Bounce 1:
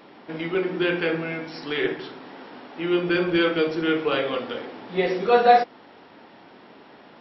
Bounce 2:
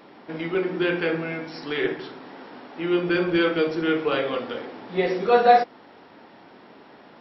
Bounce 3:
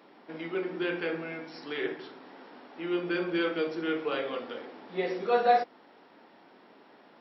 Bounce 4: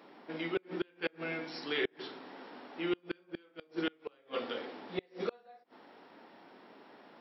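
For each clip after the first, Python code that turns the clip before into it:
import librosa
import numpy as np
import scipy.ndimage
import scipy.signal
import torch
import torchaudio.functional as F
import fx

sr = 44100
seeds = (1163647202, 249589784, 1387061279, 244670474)

y1 = fx.peak_eq(x, sr, hz=3000.0, db=-2.5, octaves=0.77)
y2 = scipy.signal.sosfilt(scipy.signal.butter(2, 190.0, 'highpass', fs=sr, output='sos'), y1)
y2 = y2 * 10.0 ** (-7.5 / 20.0)
y3 = fx.gate_flip(y2, sr, shuts_db=-22.0, range_db=-34)
y3 = fx.dynamic_eq(y3, sr, hz=3800.0, q=0.99, threshold_db=-59.0, ratio=4.0, max_db=5)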